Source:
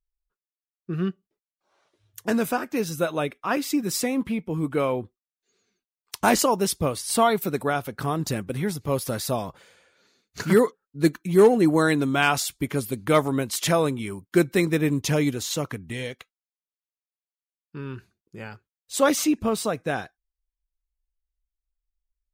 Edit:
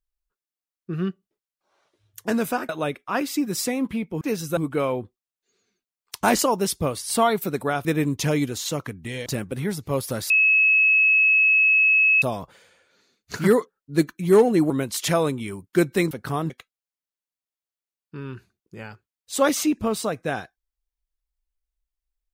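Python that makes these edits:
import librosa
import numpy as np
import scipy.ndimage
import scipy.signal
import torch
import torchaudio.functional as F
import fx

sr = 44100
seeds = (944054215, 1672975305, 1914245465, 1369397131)

y = fx.edit(x, sr, fx.move(start_s=2.69, length_s=0.36, to_s=4.57),
    fx.swap(start_s=7.85, length_s=0.39, other_s=14.7, other_length_s=1.41),
    fx.insert_tone(at_s=9.28, length_s=1.92, hz=2580.0, db=-14.0),
    fx.cut(start_s=11.76, length_s=1.53), tone=tone)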